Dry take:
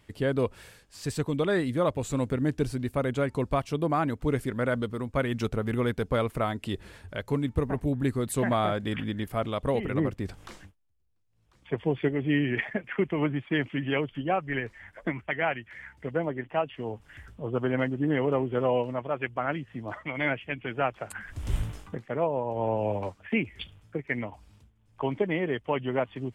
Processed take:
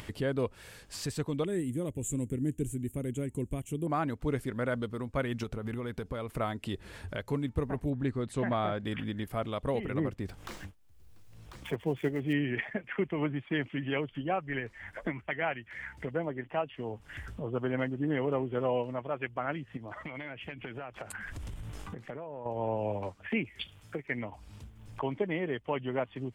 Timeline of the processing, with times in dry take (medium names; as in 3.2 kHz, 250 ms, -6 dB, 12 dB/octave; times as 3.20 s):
1.45–3.87 s: FFT filter 360 Hz 0 dB, 630 Hz -13 dB, 1.3 kHz -19 dB, 2 kHz -9 dB, 3.1 kHz -5 dB, 4.8 kHz -27 dB, 6.9 kHz +8 dB
5.43–6.29 s: compression, threshold -28 dBFS
7.90–8.85 s: distance through air 89 m
10.27–12.33 s: dead-time distortion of 0.052 ms
19.77–22.46 s: compression, threshold -41 dBFS
23.46–24.07 s: tilt EQ +1.5 dB/octave
whole clip: upward compressor, threshold -27 dBFS; trim -4.5 dB